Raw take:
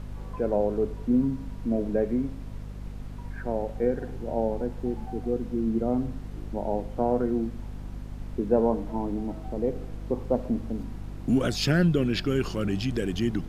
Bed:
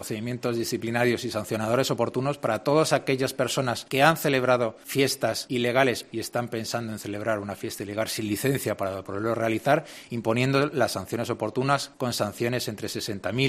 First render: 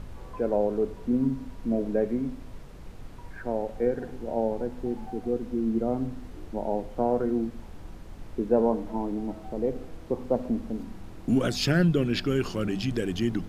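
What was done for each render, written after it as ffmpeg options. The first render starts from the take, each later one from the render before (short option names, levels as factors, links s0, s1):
-af "bandreject=f=50:t=h:w=4,bandreject=f=100:t=h:w=4,bandreject=f=150:t=h:w=4,bandreject=f=200:t=h:w=4,bandreject=f=250:t=h:w=4"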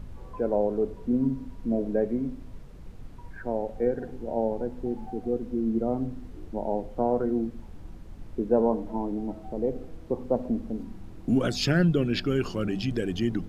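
-af "afftdn=nr=6:nf=-43"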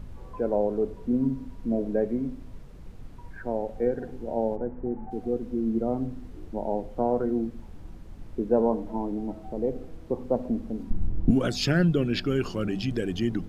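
-filter_complex "[0:a]asplit=3[s0][s1][s2];[s0]afade=t=out:st=4.55:d=0.02[s3];[s1]lowpass=f=1900:w=0.5412,lowpass=f=1900:w=1.3066,afade=t=in:st=4.55:d=0.02,afade=t=out:st=5.1:d=0.02[s4];[s2]afade=t=in:st=5.1:d=0.02[s5];[s3][s4][s5]amix=inputs=3:normalize=0,asettb=1/sr,asplit=3[s6][s7][s8];[s6]atrim=end=10.904[s9];[s7]atrim=start=10.9:end=11.31,asetpts=PTS-STARTPTS,afade=t=in:d=0.004:c=qsin,afade=t=out:st=0.406:d=0.004:c=qsin,aemphasis=mode=reproduction:type=riaa[s10];[s8]atrim=start=11.306[s11];[s9][s10]acrossfade=d=0.004:c1=hsin:c2=qsin[s12];[s12][s11]acrossfade=d=0.004:c1=qsin:c2=hsin"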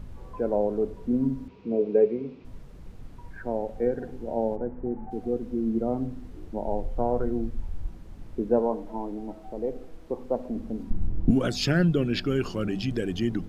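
-filter_complex "[0:a]asettb=1/sr,asplit=3[s0][s1][s2];[s0]atrim=end=1.484[s3];[s1]atrim=start=1.48:end=2.45,asetpts=PTS-STARTPTS,afade=t=in:d=0.004:c=qsin,afade=t=out:st=0.966:d=0.004:c=qsin,highpass=150,equalizer=f=260:t=q:w=4:g=-7,equalizer=f=430:t=q:w=4:g=10,equalizer=f=630:t=q:w=4:g=-6,equalizer=f=1700:t=q:w=4:g=-6,equalizer=f=2500:t=q:w=4:g=9,lowpass=f=5000:w=0.5412,lowpass=f=5000:w=1.3066[s4];[s2]atrim=start=2.446[s5];[s3][s4]acrossfade=d=0.004:c1=hsin:c2=qsin[s6];[s6][s5]acrossfade=d=0.004:c1=qsin:c2=hsin,asplit=3[s7][s8][s9];[s7]afade=t=out:st=6.66:d=0.02[s10];[s8]asubboost=boost=4:cutoff=95,afade=t=in:st=6.66:d=0.02,afade=t=out:st=7.87:d=0.02[s11];[s9]afade=t=in:st=7.87:d=0.02[s12];[s10][s11][s12]amix=inputs=3:normalize=0,asettb=1/sr,asplit=3[s13][s14][s15];[s13]atrim=end=8.594[s16];[s14]atrim=start=8.59:end=10.56,asetpts=PTS-STARTPTS,afade=t=in:d=0.004:c=qsin,afade=t=out:st=1.966:d=0.004:c=qsin,equalizer=f=97:w=0.44:g=-9[s17];[s15]atrim=start=10.556[s18];[s16][s17]acrossfade=d=0.004:c1=hsin:c2=qsin[s19];[s19][s18]acrossfade=d=0.004:c1=qsin:c2=hsin"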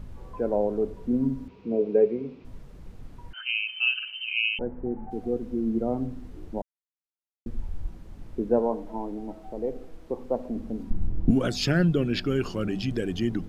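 -filter_complex "[0:a]asettb=1/sr,asplit=3[s0][s1][s2];[s0]atrim=end=3.334[s3];[s1]atrim=start=3.33:end=4.59,asetpts=PTS-STARTPTS,afade=t=in:d=0.004:c=qsin,afade=t=out:st=1.256:d=0.004:c=qsin,lowpass=f=2600:t=q:w=0.5098,lowpass=f=2600:t=q:w=0.6013,lowpass=f=2600:t=q:w=0.9,lowpass=f=2600:t=q:w=2.563,afreqshift=-3100[s4];[s2]atrim=start=4.586[s5];[s3][s4]acrossfade=d=0.004:c1=hsin:c2=qsin[s6];[s6][s5]acrossfade=d=0.004:c1=qsin:c2=hsin,asplit=3[s7][s8][s9];[s7]atrim=end=6.62,asetpts=PTS-STARTPTS,afade=t=out:st=6.616:d=0.004:c=hsin[s10];[s8]atrim=start=6.62:end=7.46,asetpts=PTS-STARTPTS,volume=0[s11];[s9]atrim=start=7.46,asetpts=PTS-STARTPTS,afade=t=in:d=0.004:c=hsin[s12];[s10][s11][s12]concat=n=3:v=0:a=1"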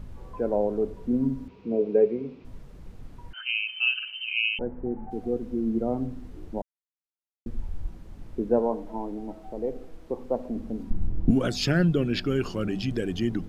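-af anull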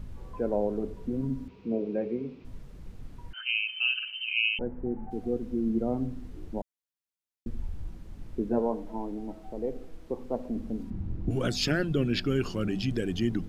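-af "afftfilt=real='re*lt(hypot(re,im),0.794)':imag='im*lt(hypot(re,im),0.794)':win_size=1024:overlap=0.75,equalizer=f=730:w=0.61:g=-3.5"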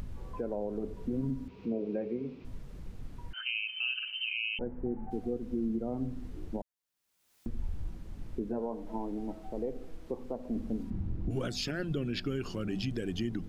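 -af "alimiter=level_in=1.06:limit=0.0631:level=0:latency=1:release=232,volume=0.944,acompressor=mode=upward:threshold=0.01:ratio=2.5"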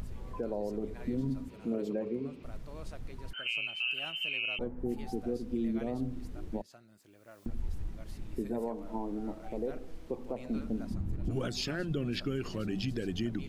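-filter_complex "[1:a]volume=0.0398[s0];[0:a][s0]amix=inputs=2:normalize=0"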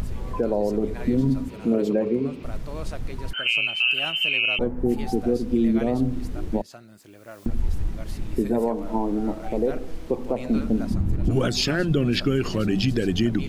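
-af "volume=3.98"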